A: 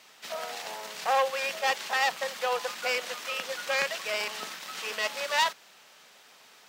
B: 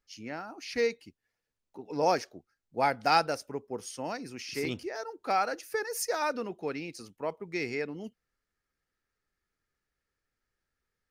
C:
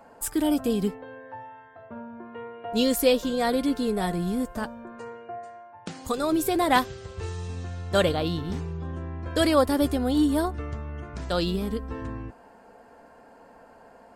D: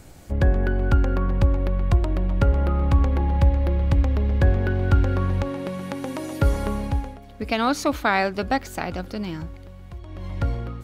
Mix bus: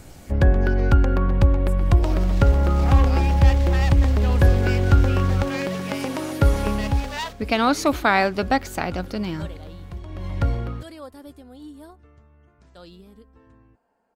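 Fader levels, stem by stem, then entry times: -5.0 dB, -12.5 dB, -19.0 dB, +2.5 dB; 1.80 s, 0.00 s, 1.45 s, 0.00 s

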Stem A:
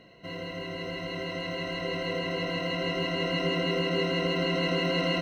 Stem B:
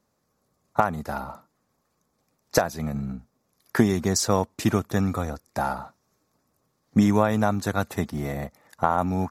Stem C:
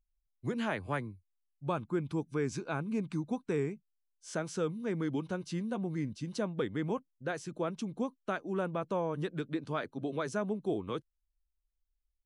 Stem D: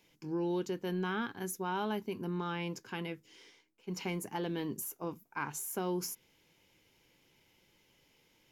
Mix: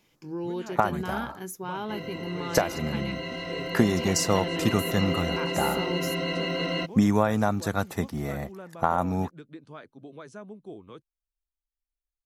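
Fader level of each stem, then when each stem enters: -1.5 dB, -2.0 dB, -9.0 dB, +1.0 dB; 1.65 s, 0.00 s, 0.00 s, 0.00 s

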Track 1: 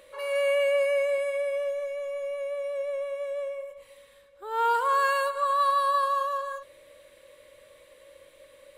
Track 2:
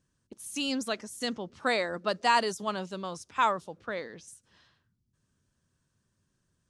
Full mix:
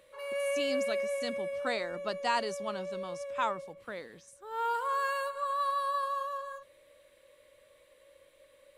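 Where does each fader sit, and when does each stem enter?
-7.5 dB, -6.0 dB; 0.00 s, 0.00 s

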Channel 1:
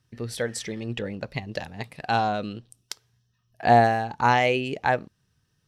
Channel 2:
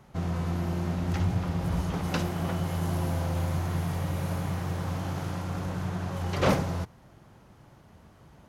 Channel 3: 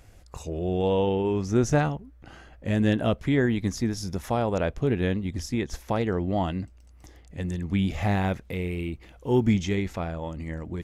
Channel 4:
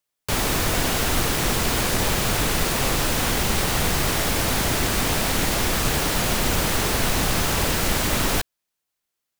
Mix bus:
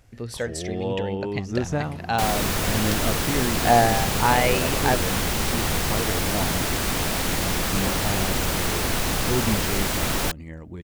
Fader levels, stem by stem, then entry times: -0.5 dB, -8.0 dB, -4.0 dB, -2.5 dB; 0.00 s, 1.40 s, 0.00 s, 1.90 s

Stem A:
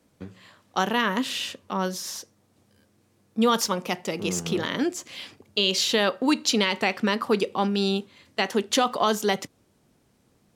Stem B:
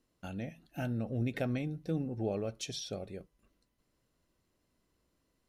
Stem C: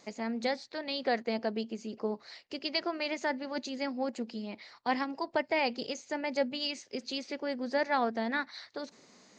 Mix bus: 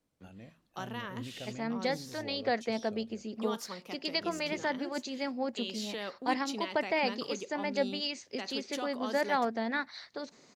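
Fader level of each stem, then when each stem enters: -17.0 dB, -11.0 dB, -0.5 dB; 0.00 s, 0.00 s, 1.40 s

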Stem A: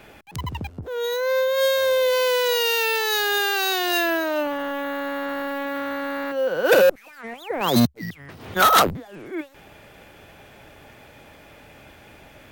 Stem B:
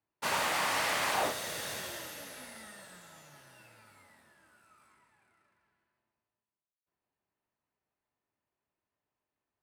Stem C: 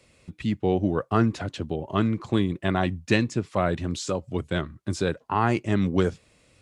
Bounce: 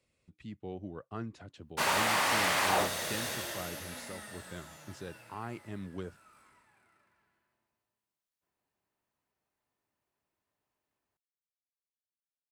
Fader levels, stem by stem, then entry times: mute, +2.5 dB, -18.5 dB; mute, 1.55 s, 0.00 s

